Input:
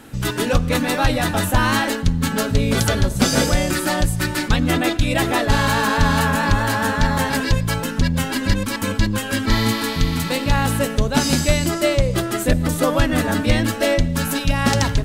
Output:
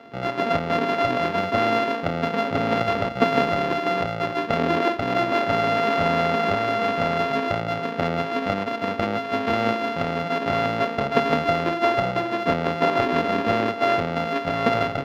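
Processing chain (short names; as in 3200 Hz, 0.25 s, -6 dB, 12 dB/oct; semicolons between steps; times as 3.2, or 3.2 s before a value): sample sorter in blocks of 64 samples; HPF 220 Hz 12 dB/oct; air absorption 310 m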